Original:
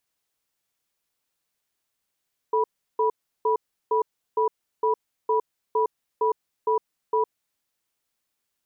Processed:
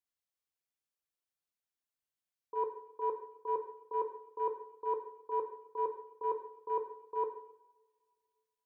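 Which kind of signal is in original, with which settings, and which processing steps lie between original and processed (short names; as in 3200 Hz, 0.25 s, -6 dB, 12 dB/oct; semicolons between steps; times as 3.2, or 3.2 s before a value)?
cadence 438 Hz, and 978 Hz, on 0.11 s, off 0.35 s, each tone -21.5 dBFS 4.77 s
gate -20 dBFS, range -17 dB; two-slope reverb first 0.69 s, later 2.4 s, from -25 dB, DRR 3.5 dB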